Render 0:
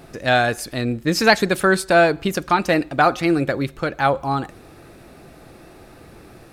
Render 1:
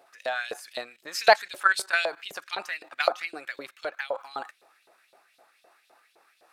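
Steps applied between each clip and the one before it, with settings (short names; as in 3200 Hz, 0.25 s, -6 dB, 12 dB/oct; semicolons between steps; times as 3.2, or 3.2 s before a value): level quantiser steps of 14 dB; LFO high-pass saw up 3.9 Hz 530–3900 Hz; gain -3 dB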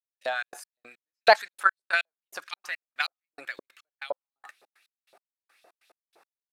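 step gate "..xx.x..x." 142 bpm -60 dB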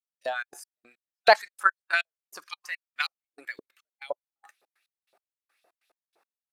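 spectral noise reduction 9 dB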